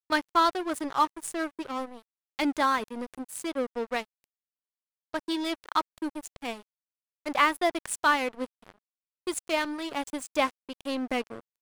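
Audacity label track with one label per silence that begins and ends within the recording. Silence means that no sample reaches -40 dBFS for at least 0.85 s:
4.040000	5.140000	silence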